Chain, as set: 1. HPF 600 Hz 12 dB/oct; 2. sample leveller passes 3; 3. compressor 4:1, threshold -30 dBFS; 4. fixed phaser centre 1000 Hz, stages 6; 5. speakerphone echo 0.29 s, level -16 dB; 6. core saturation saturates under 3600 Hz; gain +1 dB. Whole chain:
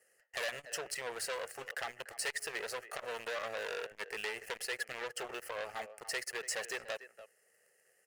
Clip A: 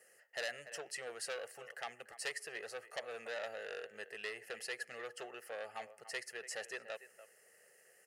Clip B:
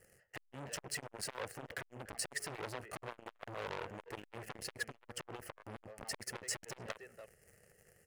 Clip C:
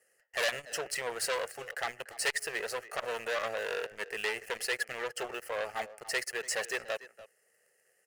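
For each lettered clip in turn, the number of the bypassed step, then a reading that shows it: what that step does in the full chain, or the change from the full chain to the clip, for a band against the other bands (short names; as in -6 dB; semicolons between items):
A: 2, 500 Hz band +2.0 dB; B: 1, 125 Hz band +16.0 dB; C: 3, loudness change +5.0 LU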